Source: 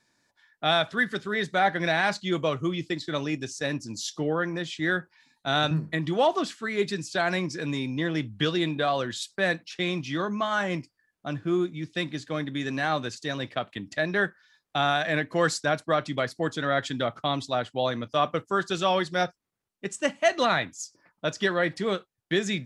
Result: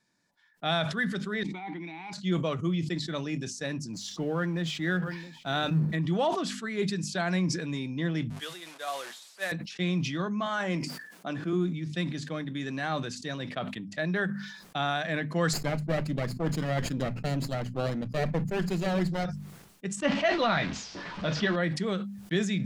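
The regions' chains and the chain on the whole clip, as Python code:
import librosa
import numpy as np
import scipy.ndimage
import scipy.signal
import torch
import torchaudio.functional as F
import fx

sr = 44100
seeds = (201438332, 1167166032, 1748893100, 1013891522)

y = fx.chain(x, sr, fx.vowel_filter(vowel='u'),
    fx.high_shelf(hz=2000.0, db=7.5),
    fx.sustainer(db_per_s=22.0), at=(1.43, 2.13))
y = fx.chain(y, sr, fx.law_mismatch(coded='mu'),
    fx.high_shelf(hz=6600.0, db=-6.5),
    fx.echo_single(ms=671, db=-23.0), at=(3.93, 5.96))
y = fx.chain(y, sr, fx.delta_mod(bps=64000, step_db=-28.0),
    fx.highpass(hz=610.0, slope=12),
    fx.upward_expand(threshold_db=-36.0, expansion=2.5), at=(8.3, 9.52))
y = fx.chain(y, sr, fx.highpass(hz=240.0, slope=12),
    fx.env_flatten(amount_pct=50), at=(10.46, 11.53))
y = fx.chain(y, sr, fx.lower_of_two(delay_ms=0.42),
    fx.tilt_shelf(db=4.5, hz=1100.0),
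    fx.hum_notches(base_hz=60, count=3), at=(15.53, 19.25))
y = fx.chain(y, sr, fx.zero_step(step_db=-28.5),
    fx.lowpass(hz=4600.0, slope=24),
    fx.doubler(ms=14.0, db=-7.0), at=(20.02, 21.56))
y = fx.peak_eq(y, sr, hz=180.0, db=10.5, octaves=0.53)
y = fx.hum_notches(y, sr, base_hz=50, count=5)
y = fx.sustainer(y, sr, db_per_s=60.0)
y = y * librosa.db_to_amplitude(-5.5)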